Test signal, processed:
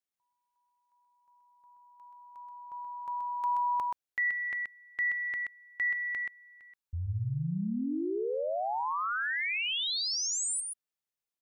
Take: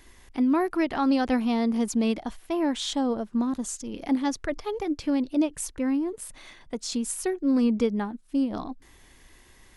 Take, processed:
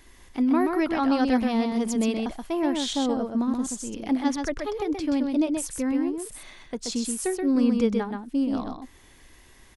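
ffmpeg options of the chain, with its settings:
ffmpeg -i in.wav -af "aecho=1:1:128:0.596" out.wav

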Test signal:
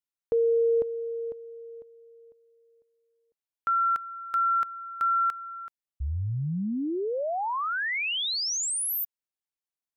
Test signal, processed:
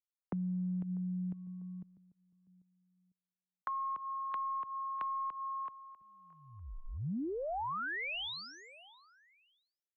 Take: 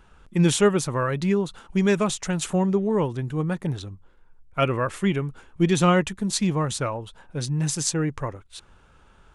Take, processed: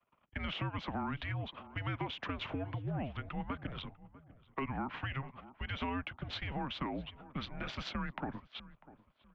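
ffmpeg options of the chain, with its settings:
ffmpeg -i in.wav -filter_complex "[0:a]agate=range=-33dB:threshold=-43dB:ratio=3:release=28:detection=peak,highpass=frequency=360:width_type=q:width=0.5412,highpass=frequency=360:width_type=q:width=1.307,lowpass=frequency=3500:width_type=q:width=0.5176,lowpass=frequency=3500:width_type=q:width=0.7071,lowpass=frequency=3500:width_type=q:width=1.932,afreqshift=-280,acompressor=threshold=-33dB:ratio=3:attack=3.5:release=198:knee=6:detection=peak,aeval=exprs='0.0891*(cos(1*acos(clip(val(0)/0.0891,-1,1)))-cos(1*PI/2))+0.00112*(cos(2*acos(clip(val(0)/0.0891,-1,1)))-cos(2*PI/2))':channel_layout=same,asplit=2[link_01][link_02];[link_02]adelay=646,lowpass=frequency=1900:poles=1,volume=-21.5dB,asplit=2[link_03][link_04];[link_04]adelay=646,lowpass=frequency=1900:poles=1,volume=0.34[link_05];[link_01][link_03][link_05]amix=inputs=3:normalize=0,acrossover=split=170|380|820[link_06][link_07][link_08][link_09];[link_06]acompressor=threshold=-45dB:ratio=4[link_10];[link_07]acompressor=threshold=-43dB:ratio=4[link_11];[link_08]acompressor=threshold=-52dB:ratio=4[link_12];[link_09]acompressor=threshold=-42dB:ratio=4[link_13];[link_10][link_11][link_12][link_13]amix=inputs=4:normalize=0,volume=2.5dB" out.wav

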